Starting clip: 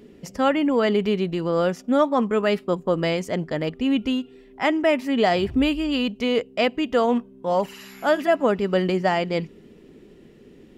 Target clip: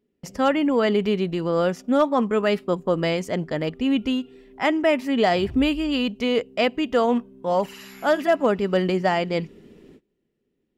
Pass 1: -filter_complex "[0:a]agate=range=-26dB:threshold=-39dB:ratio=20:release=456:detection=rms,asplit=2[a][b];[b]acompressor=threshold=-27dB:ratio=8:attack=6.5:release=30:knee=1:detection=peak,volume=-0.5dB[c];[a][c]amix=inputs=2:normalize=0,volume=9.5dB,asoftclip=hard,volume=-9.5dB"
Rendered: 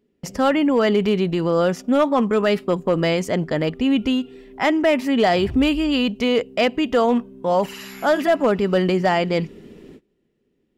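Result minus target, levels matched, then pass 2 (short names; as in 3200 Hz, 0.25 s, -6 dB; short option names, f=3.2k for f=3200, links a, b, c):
compressor: peak gain reduction +12 dB
-af "agate=range=-26dB:threshold=-39dB:ratio=20:release=456:detection=rms,volume=9.5dB,asoftclip=hard,volume=-9.5dB"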